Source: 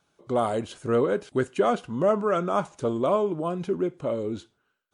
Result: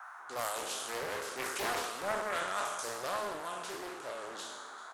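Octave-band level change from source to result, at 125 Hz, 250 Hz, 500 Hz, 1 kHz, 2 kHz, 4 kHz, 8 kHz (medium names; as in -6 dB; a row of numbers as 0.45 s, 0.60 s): -23.0 dB, -21.0 dB, -15.0 dB, -7.0 dB, +1.5 dB, +3.5 dB, no reading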